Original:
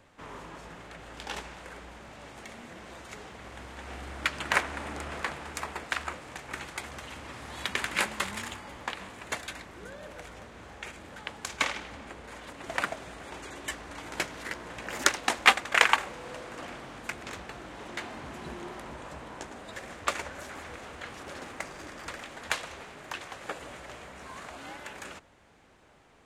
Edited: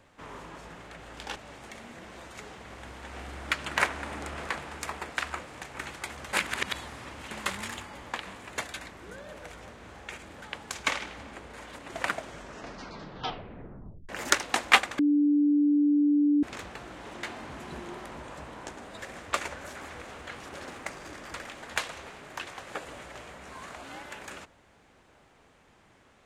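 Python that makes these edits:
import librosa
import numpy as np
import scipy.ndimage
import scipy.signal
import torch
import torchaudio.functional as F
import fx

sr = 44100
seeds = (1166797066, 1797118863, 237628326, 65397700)

y = fx.edit(x, sr, fx.cut(start_s=1.36, length_s=0.74),
    fx.reverse_span(start_s=7.07, length_s=0.98),
    fx.tape_stop(start_s=12.91, length_s=1.92),
    fx.bleep(start_s=15.73, length_s=1.44, hz=292.0, db=-19.5), tone=tone)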